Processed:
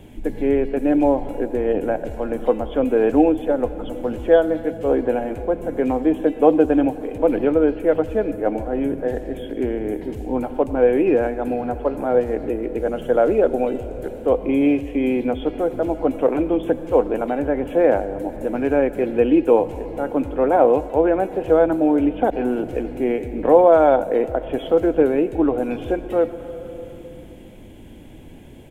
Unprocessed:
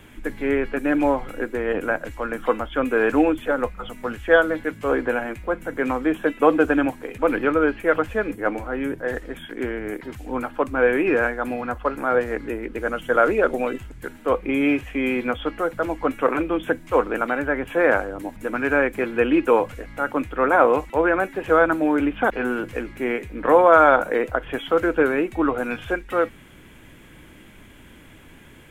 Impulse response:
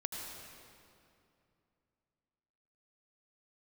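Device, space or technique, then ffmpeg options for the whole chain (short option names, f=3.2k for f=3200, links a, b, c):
compressed reverb return: -filter_complex "[0:a]asplit=2[a][b];[1:a]atrim=start_sample=2205[c];[b][c]afir=irnorm=-1:irlink=0,acompressor=threshold=-25dB:ratio=6,volume=-4dB[d];[a][d]amix=inputs=2:normalize=0,firequalizer=gain_entry='entry(760,0);entry(1200,-17);entry(2900,-8)':delay=0.05:min_phase=1,volume=2dB"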